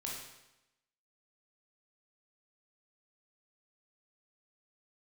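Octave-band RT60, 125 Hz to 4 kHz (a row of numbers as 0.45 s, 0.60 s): 0.90 s, 0.95 s, 0.95 s, 0.95 s, 0.90 s, 0.90 s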